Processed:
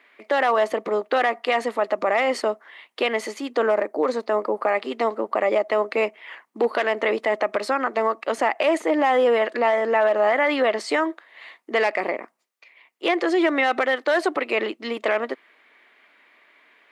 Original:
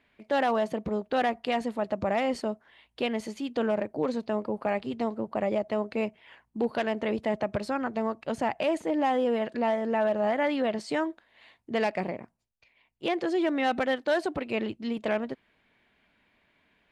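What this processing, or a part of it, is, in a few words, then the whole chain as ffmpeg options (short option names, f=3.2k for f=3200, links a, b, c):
laptop speaker: -filter_complex "[0:a]highpass=f=320:w=0.5412,highpass=f=320:w=1.3066,equalizer=f=1.2k:t=o:w=0.29:g=8,equalizer=f=2k:t=o:w=0.37:g=7,alimiter=limit=-20.5dB:level=0:latency=1:release=51,asettb=1/sr,asplit=3[a][b][c];[a]atrim=end=3.364[d];[b]atrim=start=3.36:end=4.75,asetpts=PTS-STARTPTS,afade=t=in:d=0.004:c=qsin,afade=t=out:st=1.386:d=0.004:c=qsin,equalizer=f=2.9k:t=o:w=0.91:g=-5.5[e];[c]atrim=start=4.746[f];[d][e]acrossfade=d=0.004:c1=hsin:c2=qsin[g];[g][f]acrossfade=d=0.004:c1=qsin:c2=hsin,volume=9dB"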